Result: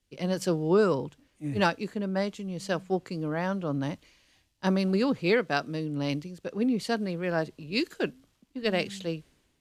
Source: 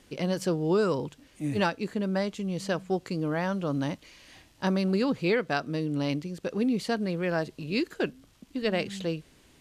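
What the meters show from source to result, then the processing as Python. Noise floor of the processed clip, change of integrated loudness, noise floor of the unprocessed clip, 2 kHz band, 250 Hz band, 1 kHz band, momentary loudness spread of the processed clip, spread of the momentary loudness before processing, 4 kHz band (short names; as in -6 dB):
-71 dBFS, 0.0 dB, -60 dBFS, +1.0 dB, -0.5 dB, +1.0 dB, 11 LU, 8 LU, +1.0 dB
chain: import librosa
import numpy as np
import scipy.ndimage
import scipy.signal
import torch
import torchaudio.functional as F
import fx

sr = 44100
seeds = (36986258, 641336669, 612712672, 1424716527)

y = fx.band_widen(x, sr, depth_pct=70)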